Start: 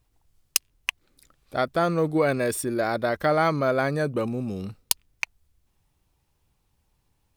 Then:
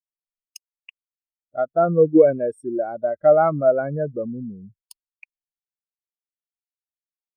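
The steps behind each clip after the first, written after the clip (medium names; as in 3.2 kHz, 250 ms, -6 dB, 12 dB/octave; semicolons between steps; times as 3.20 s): spectral contrast expander 2.5:1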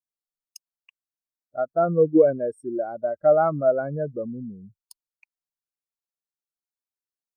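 high-order bell 2.5 kHz -9 dB 1 oct; trim -3 dB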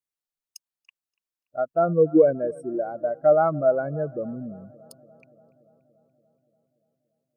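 filtered feedback delay 288 ms, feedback 69%, low-pass 2.2 kHz, level -23 dB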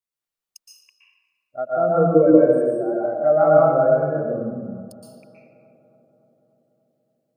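reverberation RT60 1.4 s, pre-delay 114 ms, DRR -5.5 dB; trim -1.5 dB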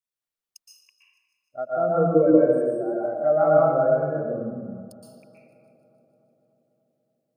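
feedback echo behind a high-pass 153 ms, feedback 70%, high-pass 2.4 kHz, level -20.5 dB; trim -3.5 dB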